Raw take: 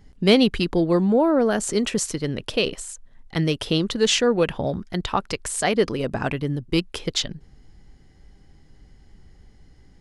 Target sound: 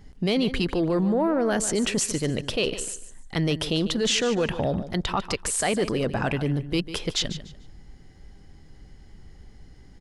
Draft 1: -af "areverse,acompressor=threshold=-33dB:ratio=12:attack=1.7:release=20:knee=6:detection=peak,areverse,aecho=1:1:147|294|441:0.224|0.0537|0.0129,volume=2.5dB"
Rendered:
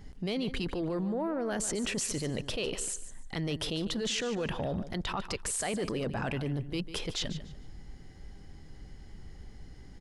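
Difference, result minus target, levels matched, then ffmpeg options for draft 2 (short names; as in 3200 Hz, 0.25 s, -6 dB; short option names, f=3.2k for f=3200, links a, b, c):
compressor: peak gain reduction +9.5 dB
-af "areverse,acompressor=threshold=-22.5dB:ratio=12:attack=1.7:release=20:knee=6:detection=peak,areverse,aecho=1:1:147|294|441:0.224|0.0537|0.0129,volume=2.5dB"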